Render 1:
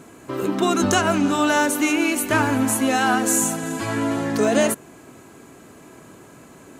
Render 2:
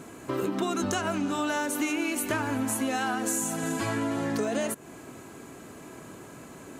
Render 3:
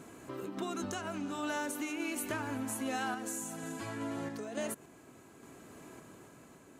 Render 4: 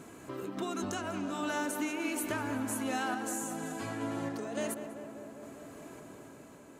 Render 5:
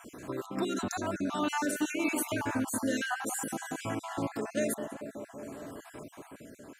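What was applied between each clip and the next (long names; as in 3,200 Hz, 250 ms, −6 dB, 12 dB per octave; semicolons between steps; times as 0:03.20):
downward compressor, threshold −26 dBFS, peak gain reduction 12 dB
sample-and-hold tremolo; level −6.5 dB
tape delay 197 ms, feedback 86%, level −8 dB, low-pass 1,900 Hz; level +1.5 dB
time-frequency cells dropped at random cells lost 41%; level +5 dB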